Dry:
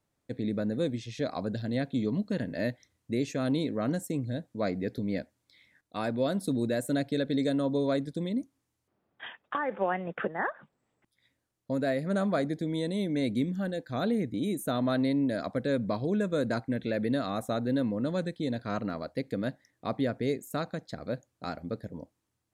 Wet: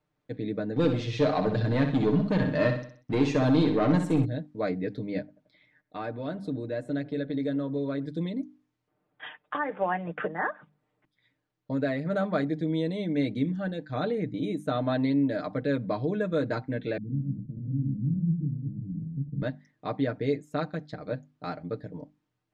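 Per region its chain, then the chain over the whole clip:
0:00.76–0:04.25: leveller curve on the samples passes 2 + repeating echo 63 ms, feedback 42%, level −7.5 dB
0:05.19–0:08.06: high-shelf EQ 3,700 Hz −7 dB + downward compressor 1.5 to 1, threshold −36 dBFS + delay with a low-pass on its return 87 ms, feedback 61%, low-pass 1,300 Hz, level −20 dB
0:16.97–0:19.42: delay that plays each chunk backwards 122 ms, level −2 dB + inverse Chebyshev low-pass filter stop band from 740 Hz, stop band 60 dB + parametric band 150 Hz +11.5 dB 0.29 octaves
whole clip: low-pass filter 3,700 Hz 12 dB per octave; mains-hum notches 50/100/150/200/250/300 Hz; comb filter 6.6 ms

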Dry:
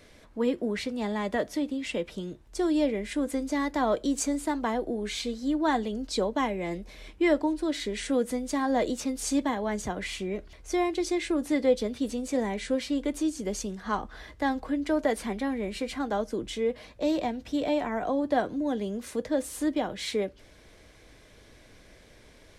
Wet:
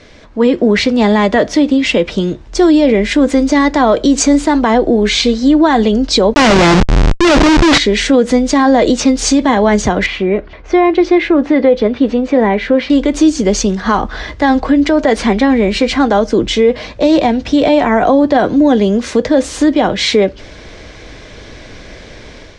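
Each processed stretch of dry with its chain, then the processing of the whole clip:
0:06.34–0:07.78: parametric band 70 Hz −4.5 dB 0.22 octaves + comparator with hysteresis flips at −40.5 dBFS
0:10.06–0:12.90: low-pass filter 2,200 Hz + low-shelf EQ 190 Hz −7.5 dB
whole clip: low-pass filter 6,500 Hz 24 dB per octave; automatic gain control gain up to 7 dB; boost into a limiter +15 dB; level −1 dB

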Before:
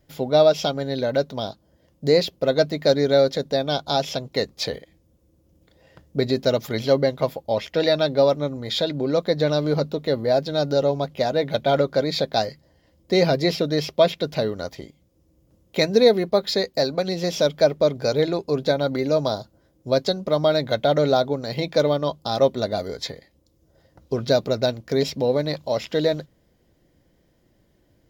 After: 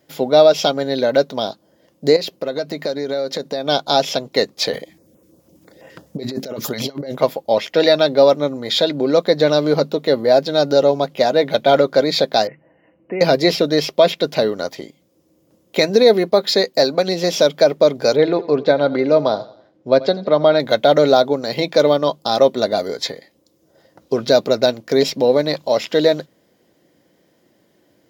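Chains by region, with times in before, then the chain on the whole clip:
0:02.16–0:03.66: notch filter 3,400 Hz, Q 16 + downward compressor 5 to 1, threshold −26 dBFS
0:04.73–0:07.18: parametric band 3,300 Hz −3 dB 1.1 octaves + compressor whose output falls as the input rises −30 dBFS + notch on a step sequencer 12 Hz 350–4,400 Hz
0:12.47–0:13.21: comb filter 6.2 ms, depth 30% + downward compressor 2 to 1, threshold −35 dBFS + linear-phase brick-wall low-pass 3,000 Hz
0:18.16–0:20.60: low-pass filter 3,000 Hz + repeating echo 85 ms, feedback 44%, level −18.5 dB
whole clip: high-pass filter 220 Hz 12 dB per octave; boost into a limiter +8 dB; level −1 dB

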